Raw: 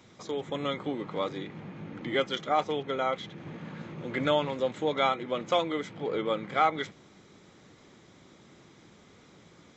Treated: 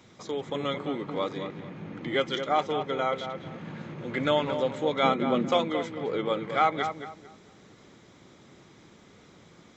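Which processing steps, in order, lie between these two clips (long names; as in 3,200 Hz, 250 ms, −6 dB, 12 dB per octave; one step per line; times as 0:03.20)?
0:05.03–0:05.50: parametric band 220 Hz +13 dB 1.3 octaves
on a send: feedback echo with a low-pass in the loop 222 ms, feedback 29%, low-pass 1,900 Hz, level −7.5 dB
on the sum: level +1 dB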